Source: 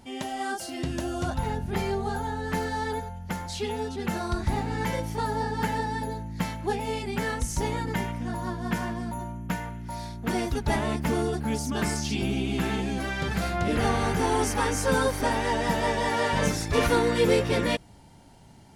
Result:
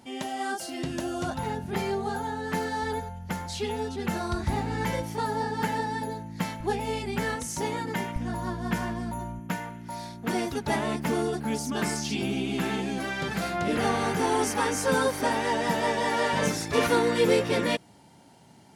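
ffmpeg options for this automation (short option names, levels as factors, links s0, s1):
-af "asetnsamples=n=441:p=0,asendcmd='2.82 highpass f 59;5.02 highpass f 130;6.6 highpass f 51;7.36 highpass f 170;8.16 highpass f 45;9.39 highpass f 150',highpass=130"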